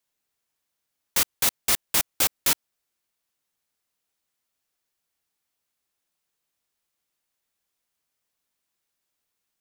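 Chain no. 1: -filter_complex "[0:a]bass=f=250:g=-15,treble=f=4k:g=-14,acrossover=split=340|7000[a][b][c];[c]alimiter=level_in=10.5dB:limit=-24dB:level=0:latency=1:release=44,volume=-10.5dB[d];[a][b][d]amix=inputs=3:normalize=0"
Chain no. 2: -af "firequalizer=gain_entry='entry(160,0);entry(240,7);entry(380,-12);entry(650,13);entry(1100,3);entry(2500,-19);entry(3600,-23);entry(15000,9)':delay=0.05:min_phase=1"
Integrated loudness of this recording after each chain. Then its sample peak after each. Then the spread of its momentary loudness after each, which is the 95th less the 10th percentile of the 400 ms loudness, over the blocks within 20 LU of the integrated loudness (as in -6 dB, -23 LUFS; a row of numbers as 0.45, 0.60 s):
-33.5, -17.5 LUFS; -16.5, -2.0 dBFS; 4, 4 LU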